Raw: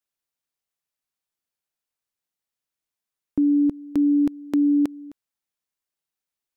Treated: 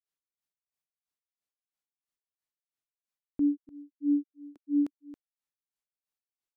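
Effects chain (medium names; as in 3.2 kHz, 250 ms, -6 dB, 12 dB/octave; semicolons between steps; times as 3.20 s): granulator 242 ms, grains 3 per s, spray 25 ms, pitch spread up and down by 0 st; trim -4.5 dB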